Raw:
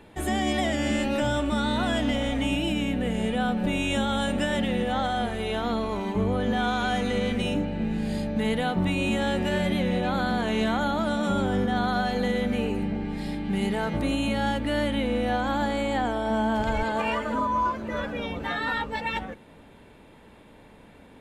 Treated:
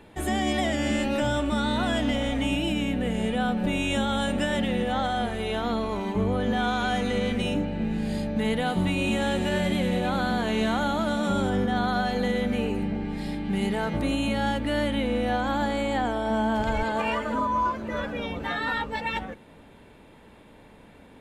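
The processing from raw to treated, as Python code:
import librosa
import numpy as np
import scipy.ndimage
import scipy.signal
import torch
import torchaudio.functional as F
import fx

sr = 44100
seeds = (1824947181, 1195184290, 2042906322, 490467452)

y = fx.echo_wet_highpass(x, sr, ms=98, feedback_pct=75, hz=4900.0, wet_db=-4, at=(8.65, 11.49), fade=0.02)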